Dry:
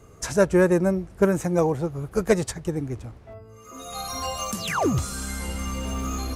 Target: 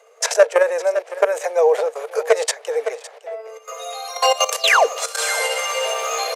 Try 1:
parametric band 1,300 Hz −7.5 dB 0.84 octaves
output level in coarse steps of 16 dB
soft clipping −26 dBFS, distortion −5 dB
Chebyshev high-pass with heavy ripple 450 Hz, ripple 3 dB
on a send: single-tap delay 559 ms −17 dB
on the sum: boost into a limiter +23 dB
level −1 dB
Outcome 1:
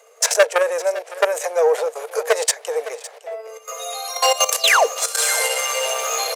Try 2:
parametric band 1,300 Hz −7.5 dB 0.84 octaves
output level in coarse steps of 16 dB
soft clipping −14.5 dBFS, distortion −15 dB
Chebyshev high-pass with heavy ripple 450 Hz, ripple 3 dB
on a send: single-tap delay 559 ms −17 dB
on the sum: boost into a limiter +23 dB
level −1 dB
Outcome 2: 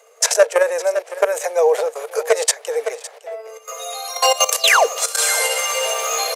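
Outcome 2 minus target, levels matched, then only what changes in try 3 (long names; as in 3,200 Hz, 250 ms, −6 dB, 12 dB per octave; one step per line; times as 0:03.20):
8,000 Hz band +4.5 dB
add after Chebyshev high-pass with heavy ripple: high-shelf EQ 6,300 Hz −11 dB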